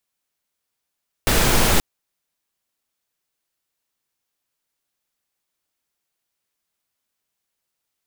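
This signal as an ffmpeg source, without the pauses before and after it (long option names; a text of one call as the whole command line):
ffmpeg -f lavfi -i "anoisesrc=color=pink:amplitude=0.767:duration=0.53:sample_rate=44100:seed=1" out.wav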